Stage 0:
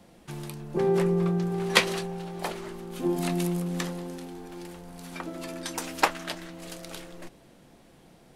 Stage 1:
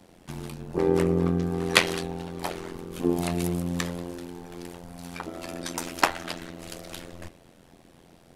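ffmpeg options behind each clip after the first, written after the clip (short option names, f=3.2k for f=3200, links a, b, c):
-af "bandreject=f=111.7:t=h:w=4,bandreject=f=223.4:t=h:w=4,bandreject=f=335.1:t=h:w=4,bandreject=f=446.8:t=h:w=4,bandreject=f=558.5:t=h:w=4,bandreject=f=670.2:t=h:w=4,bandreject=f=781.9:t=h:w=4,bandreject=f=893.6:t=h:w=4,bandreject=f=1.0053k:t=h:w=4,bandreject=f=1.117k:t=h:w=4,bandreject=f=1.2287k:t=h:w=4,bandreject=f=1.3404k:t=h:w=4,bandreject=f=1.4521k:t=h:w=4,bandreject=f=1.5638k:t=h:w=4,bandreject=f=1.6755k:t=h:w=4,bandreject=f=1.7872k:t=h:w=4,bandreject=f=1.8989k:t=h:w=4,bandreject=f=2.0106k:t=h:w=4,bandreject=f=2.1223k:t=h:w=4,bandreject=f=2.234k:t=h:w=4,bandreject=f=2.3457k:t=h:w=4,bandreject=f=2.4574k:t=h:w=4,bandreject=f=2.5691k:t=h:w=4,bandreject=f=2.6808k:t=h:w=4,bandreject=f=2.7925k:t=h:w=4,bandreject=f=2.9042k:t=h:w=4,bandreject=f=3.0159k:t=h:w=4,bandreject=f=3.1276k:t=h:w=4,bandreject=f=3.2393k:t=h:w=4,bandreject=f=3.351k:t=h:w=4,bandreject=f=3.4627k:t=h:w=4,bandreject=f=3.5744k:t=h:w=4,bandreject=f=3.6861k:t=h:w=4,bandreject=f=3.7978k:t=h:w=4,bandreject=f=3.9095k:t=h:w=4,bandreject=f=4.0212k:t=h:w=4,bandreject=f=4.1329k:t=h:w=4,bandreject=f=4.2446k:t=h:w=4,bandreject=f=4.3563k:t=h:w=4,bandreject=f=4.468k:t=h:w=4,tremolo=f=86:d=0.947,volume=5dB"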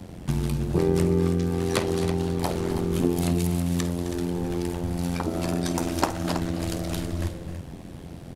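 -filter_complex "[0:a]equalizer=f=82:w=0.4:g=14.5,acrossover=split=1300|3600[a][b][c];[a]acompressor=threshold=-28dB:ratio=4[d];[b]acompressor=threshold=-51dB:ratio=4[e];[c]acompressor=threshold=-41dB:ratio=4[f];[d][e][f]amix=inputs=3:normalize=0,asplit=2[g][h];[h]aecho=0:1:51|261|276|324:0.188|0.2|0.133|0.299[i];[g][i]amix=inputs=2:normalize=0,volume=6.5dB"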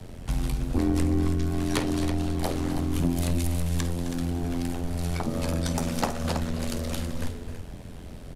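-af "afreqshift=-92,asoftclip=type=tanh:threshold=-15dB"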